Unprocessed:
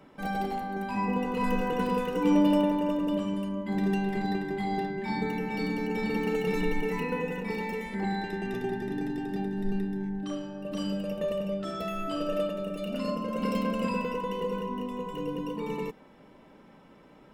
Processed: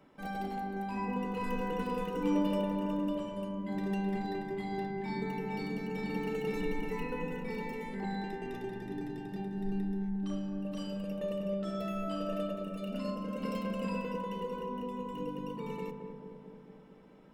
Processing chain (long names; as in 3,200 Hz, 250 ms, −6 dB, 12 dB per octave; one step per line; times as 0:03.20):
feedback echo with a low-pass in the loop 219 ms, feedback 72%, low-pass 940 Hz, level −5 dB
level −7 dB